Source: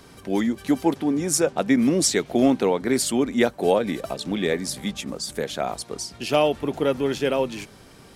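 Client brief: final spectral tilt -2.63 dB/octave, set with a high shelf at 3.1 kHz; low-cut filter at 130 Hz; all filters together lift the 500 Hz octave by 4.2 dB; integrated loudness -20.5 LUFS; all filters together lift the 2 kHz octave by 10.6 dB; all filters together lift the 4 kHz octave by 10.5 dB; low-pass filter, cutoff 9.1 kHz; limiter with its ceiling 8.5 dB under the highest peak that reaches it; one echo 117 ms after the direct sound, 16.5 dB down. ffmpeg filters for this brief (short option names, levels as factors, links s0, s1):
-af "highpass=130,lowpass=9100,equalizer=f=500:t=o:g=4.5,equalizer=f=2000:t=o:g=8.5,highshelf=f=3100:g=6,equalizer=f=4000:t=o:g=6.5,alimiter=limit=0.398:level=0:latency=1,aecho=1:1:117:0.15"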